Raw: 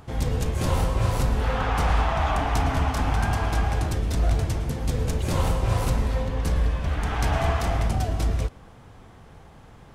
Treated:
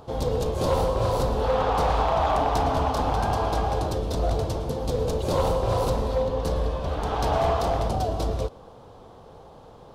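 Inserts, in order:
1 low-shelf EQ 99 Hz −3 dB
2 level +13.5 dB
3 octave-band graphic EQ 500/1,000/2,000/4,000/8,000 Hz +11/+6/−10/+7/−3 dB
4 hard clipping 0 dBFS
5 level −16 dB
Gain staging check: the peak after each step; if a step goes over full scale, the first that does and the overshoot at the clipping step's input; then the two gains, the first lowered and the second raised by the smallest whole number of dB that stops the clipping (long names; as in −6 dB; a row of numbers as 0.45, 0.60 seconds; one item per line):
−11.5, +2.0, +7.0, 0.0, −16.0 dBFS
step 2, 7.0 dB
step 2 +6.5 dB, step 5 −9 dB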